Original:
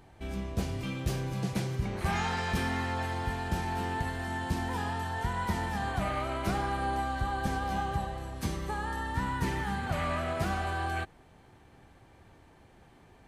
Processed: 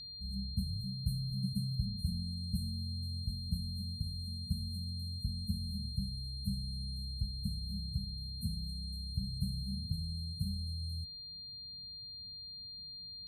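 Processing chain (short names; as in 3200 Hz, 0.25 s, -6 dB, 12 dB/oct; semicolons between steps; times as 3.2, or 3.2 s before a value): notch comb 250 Hz; FFT band-reject 230–8000 Hz; whine 4200 Hz -42 dBFS; gain -2.5 dB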